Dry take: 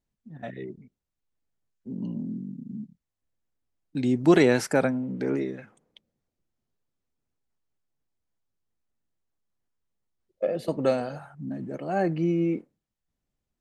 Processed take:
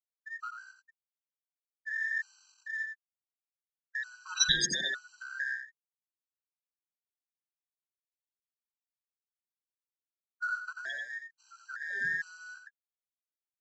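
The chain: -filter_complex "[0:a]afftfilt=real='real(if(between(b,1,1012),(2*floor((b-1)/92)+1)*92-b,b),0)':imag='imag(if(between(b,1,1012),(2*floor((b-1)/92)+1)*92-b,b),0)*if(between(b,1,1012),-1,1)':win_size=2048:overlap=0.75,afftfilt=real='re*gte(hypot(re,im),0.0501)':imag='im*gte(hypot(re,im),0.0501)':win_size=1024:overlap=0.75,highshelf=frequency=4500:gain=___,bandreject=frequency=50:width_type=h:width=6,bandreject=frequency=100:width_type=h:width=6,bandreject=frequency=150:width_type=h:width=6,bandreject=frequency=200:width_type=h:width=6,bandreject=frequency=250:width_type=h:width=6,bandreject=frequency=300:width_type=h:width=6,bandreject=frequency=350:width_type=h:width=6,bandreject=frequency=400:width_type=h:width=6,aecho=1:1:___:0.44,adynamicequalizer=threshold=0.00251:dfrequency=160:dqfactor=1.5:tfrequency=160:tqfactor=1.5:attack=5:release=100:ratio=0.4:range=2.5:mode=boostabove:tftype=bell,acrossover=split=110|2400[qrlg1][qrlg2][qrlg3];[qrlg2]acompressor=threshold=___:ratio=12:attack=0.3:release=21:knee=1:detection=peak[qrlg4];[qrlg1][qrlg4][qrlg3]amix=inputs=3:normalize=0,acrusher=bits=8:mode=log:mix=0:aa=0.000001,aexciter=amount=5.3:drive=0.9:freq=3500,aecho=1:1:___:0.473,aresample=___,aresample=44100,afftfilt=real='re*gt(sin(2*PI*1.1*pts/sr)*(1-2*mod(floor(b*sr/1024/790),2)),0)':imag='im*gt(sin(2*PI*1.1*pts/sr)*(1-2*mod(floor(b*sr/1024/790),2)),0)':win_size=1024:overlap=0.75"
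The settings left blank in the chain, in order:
6.5, 5.6, 0.02, 88, 16000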